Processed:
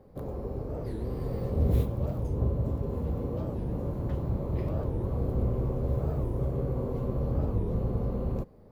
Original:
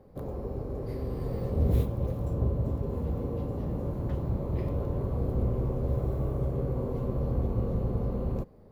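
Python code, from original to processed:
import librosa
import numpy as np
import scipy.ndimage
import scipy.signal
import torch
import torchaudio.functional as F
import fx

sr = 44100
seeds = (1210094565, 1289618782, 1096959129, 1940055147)

y = fx.record_warp(x, sr, rpm=45.0, depth_cents=250.0)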